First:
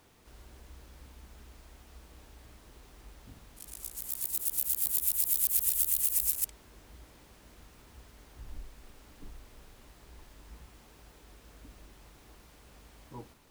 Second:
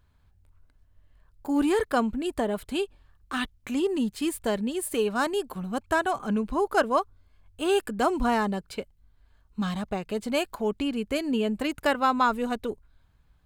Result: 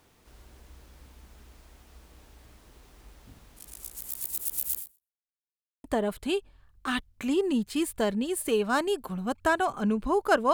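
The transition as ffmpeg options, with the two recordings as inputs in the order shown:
-filter_complex "[0:a]apad=whole_dur=10.53,atrim=end=10.53,asplit=2[s0][s1];[s0]atrim=end=5.23,asetpts=PTS-STARTPTS,afade=t=out:st=4.78:d=0.45:c=exp[s2];[s1]atrim=start=5.23:end=5.84,asetpts=PTS-STARTPTS,volume=0[s3];[1:a]atrim=start=2.3:end=6.99,asetpts=PTS-STARTPTS,afade=t=in:d=0.004:c=hsin[s4];[s2][s3][s4]concat=n=3:v=0:a=1"

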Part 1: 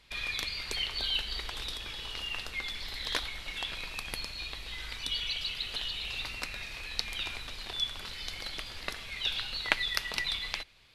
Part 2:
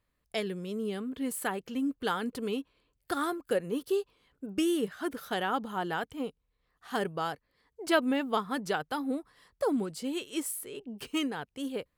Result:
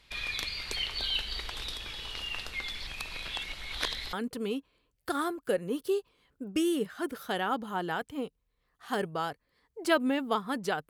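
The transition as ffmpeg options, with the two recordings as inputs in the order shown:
-filter_complex "[0:a]apad=whole_dur=10.89,atrim=end=10.89,asplit=2[s0][s1];[s0]atrim=end=2.872[s2];[s1]atrim=start=2.868:end=4.132,asetpts=PTS-STARTPTS,areverse[s3];[1:a]atrim=start=2.148:end=8.91[s4];[s2][s3]acrossfade=d=0.004:c1=hsin:c2=hsin[s5];[s5][s4]acrossfade=d=0.004:c1=hsin:c2=hsin"

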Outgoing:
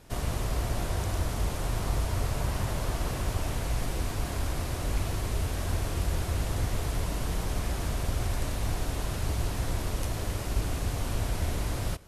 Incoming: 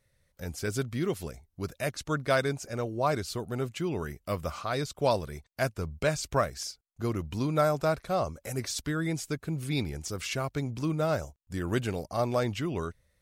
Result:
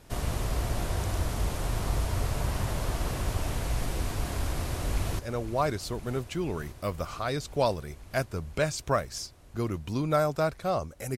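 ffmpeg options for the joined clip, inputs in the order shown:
-filter_complex "[0:a]apad=whole_dur=11.17,atrim=end=11.17,atrim=end=5.192[s0];[1:a]atrim=start=2.638:end=8.62[s1];[s0][s1]acrossfade=d=0.004:c1=hsin:c2=hsin,asplit=2[s2][s3];[s3]afade=t=in:st=4.53:d=0.01,afade=t=out:st=5.19:d=0.01,aecho=0:1:510|1020|1530|2040|2550|3060|3570|4080|4590|5100|5610|6120:0.237137|0.201567|0.171332|0.145632|0.123787|0.105219|0.0894362|0.0760208|0.0646177|0.054925|0.0466863|0.0396833[s4];[s2][s4]amix=inputs=2:normalize=0"

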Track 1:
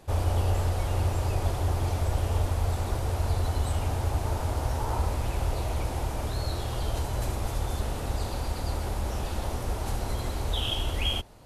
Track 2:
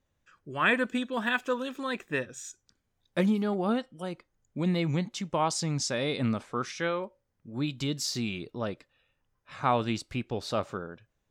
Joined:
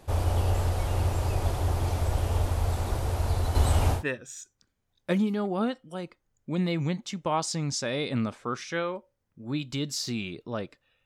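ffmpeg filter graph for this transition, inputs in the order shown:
-filter_complex "[0:a]asettb=1/sr,asplit=3[s0][s1][s2];[s0]atrim=end=3.554[s3];[s1]atrim=start=3.55:end=4.04,asetpts=PTS-STARTPTS,afade=t=in:d=0.004:c=qsin,afade=t=out:st=0.486:d=0.004:c=qsin,acontrast=28[s4];[s2]atrim=start=4.036[s5];[s3][s4]acrossfade=d=0.004:c1=hsin:c2=qsin[s6];[s6][s5]acrossfade=d=0.004:c1=qsin:c2=hsin,apad=whole_dur=11.05,atrim=end=11.05,atrim=end=4.04,asetpts=PTS-STARTPTS[s7];[1:a]atrim=start=1.98:end=9.13,asetpts=PTS-STARTPTS[s8];[s7][s8]acrossfade=d=0.14:c1=tri:c2=tri"

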